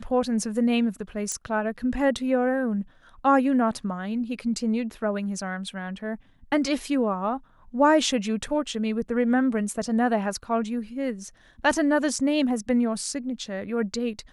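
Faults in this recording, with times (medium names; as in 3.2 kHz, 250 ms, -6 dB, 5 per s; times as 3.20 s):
1.32 s: pop -16 dBFS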